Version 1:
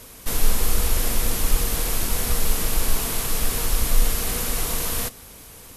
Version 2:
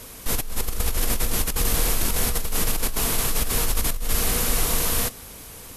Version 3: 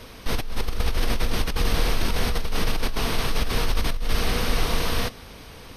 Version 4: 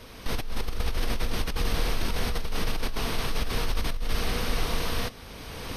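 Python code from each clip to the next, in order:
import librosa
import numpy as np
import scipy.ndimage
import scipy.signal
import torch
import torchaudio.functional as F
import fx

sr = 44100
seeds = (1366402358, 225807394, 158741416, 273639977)

y1 = fx.over_compress(x, sr, threshold_db=-21.0, ratio=-1.0)
y2 = scipy.signal.savgol_filter(y1, 15, 4, mode='constant')
y2 = y2 * 10.0 ** (1.5 / 20.0)
y3 = fx.recorder_agc(y2, sr, target_db=-15.5, rise_db_per_s=18.0, max_gain_db=30)
y3 = y3 * 10.0 ** (-4.5 / 20.0)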